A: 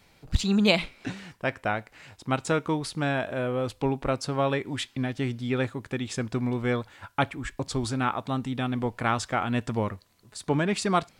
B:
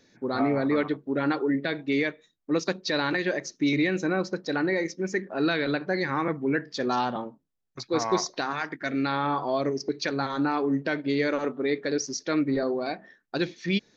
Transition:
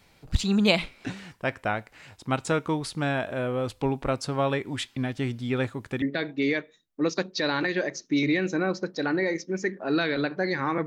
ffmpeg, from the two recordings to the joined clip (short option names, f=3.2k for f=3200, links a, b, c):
-filter_complex "[0:a]apad=whole_dur=10.86,atrim=end=10.86,atrim=end=6.022[a];[1:a]atrim=start=1.518:end=6.36[b];[a][b]acrossfade=d=0.004:c1=hsin:c2=hsin"